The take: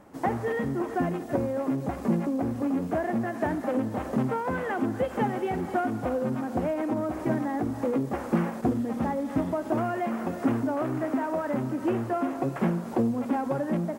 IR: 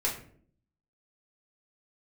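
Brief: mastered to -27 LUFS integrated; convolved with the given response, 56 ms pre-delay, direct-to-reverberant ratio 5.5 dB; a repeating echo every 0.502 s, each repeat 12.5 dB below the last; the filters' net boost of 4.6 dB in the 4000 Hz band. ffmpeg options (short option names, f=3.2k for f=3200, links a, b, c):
-filter_complex "[0:a]equalizer=f=4k:t=o:g=6.5,aecho=1:1:502|1004|1506:0.237|0.0569|0.0137,asplit=2[a][b];[1:a]atrim=start_sample=2205,adelay=56[c];[b][c]afir=irnorm=-1:irlink=0,volume=-12.5dB[d];[a][d]amix=inputs=2:normalize=0"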